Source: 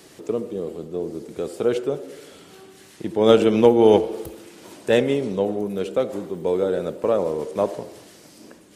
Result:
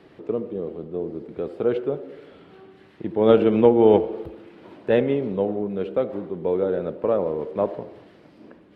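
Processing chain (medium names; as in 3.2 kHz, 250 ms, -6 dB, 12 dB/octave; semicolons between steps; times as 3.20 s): distance through air 420 m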